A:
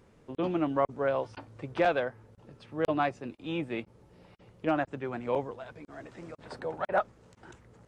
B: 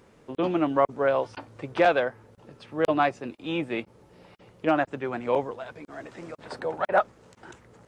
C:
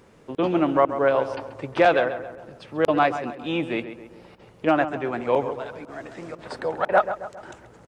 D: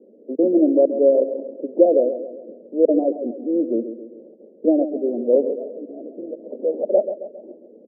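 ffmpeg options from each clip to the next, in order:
-af "lowshelf=f=160:g=-8.5,volume=2"
-filter_complex "[0:a]asplit=2[s0][s1];[s1]adelay=135,lowpass=f=2500:p=1,volume=0.299,asplit=2[s2][s3];[s3]adelay=135,lowpass=f=2500:p=1,volume=0.49,asplit=2[s4][s5];[s5]adelay=135,lowpass=f=2500:p=1,volume=0.49,asplit=2[s6][s7];[s7]adelay=135,lowpass=f=2500:p=1,volume=0.49,asplit=2[s8][s9];[s9]adelay=135,lowpass=f=2500:p=1,volume=0.49[s10];[s0][s2][s4][s6][s8][s10]amix=inputs=6:normalize=0,volume=1.41"
-af "asuperpass=centerf=360:order=12:qfactor=0.93,volume=2.11"

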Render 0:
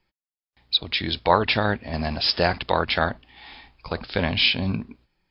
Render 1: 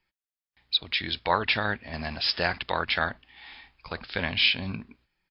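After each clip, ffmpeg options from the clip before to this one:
-af "firequalizer=gain_entry='entry(550,0);entry(1700,8);entry(4600,4)':delay=0.05:min_phase=1,volume=0.376"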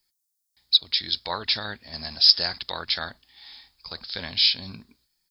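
-af "aexciter=amount=14.2:drive=2.2:freq=4000,volume=0.473"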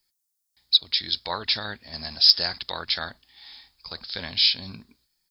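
-af "asoftclip=type=hard:threshold=0.708"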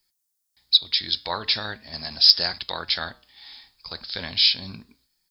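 -af "flanger=delay=5.3:depth=3.3:regen=-89:speed=0.41:shape=triangular,volume=2"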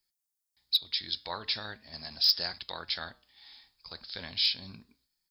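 -af "asoftclip=type=hard:threshold=0.447,volume=0.355"

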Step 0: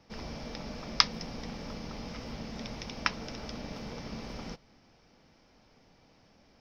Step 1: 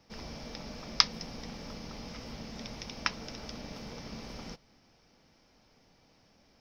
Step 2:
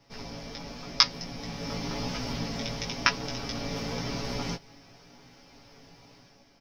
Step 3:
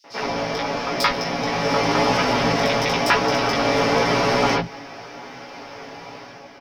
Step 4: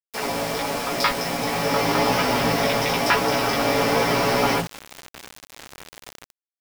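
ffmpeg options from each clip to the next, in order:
-af "highshelf=f=5000:g=7,volume=0.708"
-af "aecho=1:1:7.2:0.65,dynaudnorm=f=120:g=9:m=2.51,flanger=delay=16:depth=2.1:speed=0.94,volume=1.68"
-filter_complex "[0:a]asplit=2[s0][s1];[s1]highpass=f=720:p=1,volume=35.5,asoftclip=type=tanh:threshold=0.891[s2];[s0][s2]amix=inputs=2:normalize=0,lowpass=f=1400:p=1,volume=0.501,acrossover=split=200|4400[s3][s4][s5];[s4]adelay=40[s6];[s3]adelay=100[s7];[s7][s6][s5]amix=inputs=3:normalize=0"
-af "acrusher=bits=4:mix=0:aa=0.000001,volume=0.841"

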